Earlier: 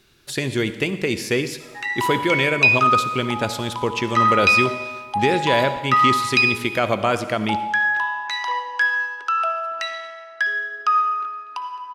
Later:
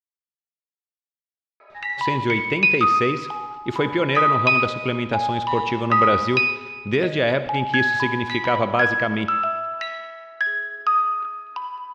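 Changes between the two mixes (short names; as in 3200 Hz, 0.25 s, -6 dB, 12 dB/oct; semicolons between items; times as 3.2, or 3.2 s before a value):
speech: entry +1.70 s; master: add air absorption 180 m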